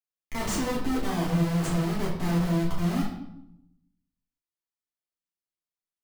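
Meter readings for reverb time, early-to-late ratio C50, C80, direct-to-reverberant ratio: 0.80 s, 4.0 dB, 7.0 dB, -7.0 dB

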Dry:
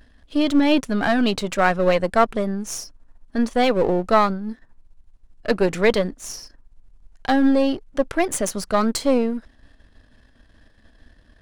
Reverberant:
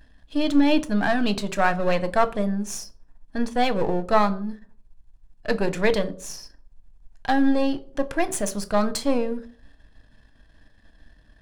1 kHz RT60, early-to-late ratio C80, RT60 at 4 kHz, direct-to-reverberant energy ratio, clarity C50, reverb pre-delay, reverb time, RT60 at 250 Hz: 0.40 s, 22.5 dB, 0.30 s, 11.0 dB, 19.0 dB, 6 ms, 0.45 s, 0.60 s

